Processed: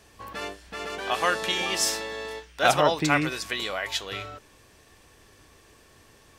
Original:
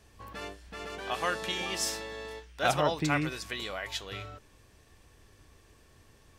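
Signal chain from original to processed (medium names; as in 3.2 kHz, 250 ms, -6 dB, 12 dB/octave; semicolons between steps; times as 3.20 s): bass shelf 160 Hz -9.5 dB; trim +7 dB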